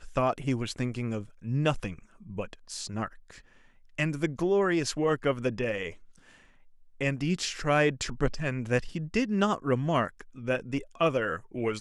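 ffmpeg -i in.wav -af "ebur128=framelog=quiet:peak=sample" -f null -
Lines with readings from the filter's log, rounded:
Integrated loudness:
  I:         -29.7 LUFS
  Threshold: -40.3 LUFS
Loudness range:
  LRA:         5.2 LU
  Threshold: -50.3 LUFS
  LRA low:   -33.8 LUFS
  LRA high:  -28.5 LUFS
Sample peak:
  Peak:      -10.6 dBFS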